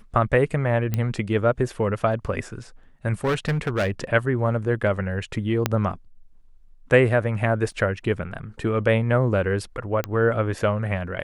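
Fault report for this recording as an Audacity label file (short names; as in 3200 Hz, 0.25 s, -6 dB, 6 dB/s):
0.940000	0.940000	pop -11 dBFS
3.240000	4.040000	clipped -18.5 dBFS
5.660000	5.660000	pop -5 dBFS
7.720000	7.720000	gap 2.1 ms
10.040000	10.040000	pop -12 dBFS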